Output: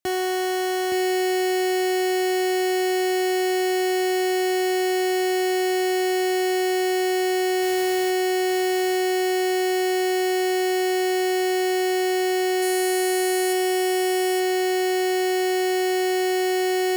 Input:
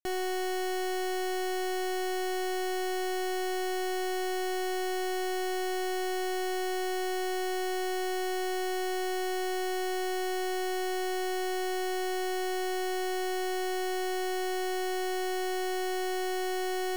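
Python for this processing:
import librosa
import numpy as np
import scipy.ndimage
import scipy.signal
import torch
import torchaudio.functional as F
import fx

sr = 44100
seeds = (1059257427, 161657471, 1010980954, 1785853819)

y = scipy.signal.sosfilt(scipy.signal.butter(4, 57.0, 'highpass', fs=sr, output='sos'), x)
y = fx.quant_dither(y, sr, seeds[0], bits=8, dither='triangular', at=(7.61, 8.09), fade=0.02)
y = fx.peak_eq(y, sr, hz=10000.0, db=11.0, octaves=0.83, at=(12.62, 13.53))
y = y + 10.0 ** (-5.0 / 20.0) * np.pad(y, (int(868 * sr / 1000.0), 0))[:len(y)]
y = F.gain(torch.from_numpy(y), 8.0).numpy()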